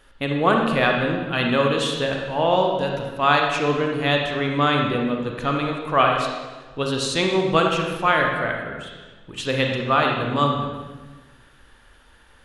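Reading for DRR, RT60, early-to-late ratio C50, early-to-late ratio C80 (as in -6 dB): 1.0 dB, 1.3 s, 2.0 dB, 4.5 dB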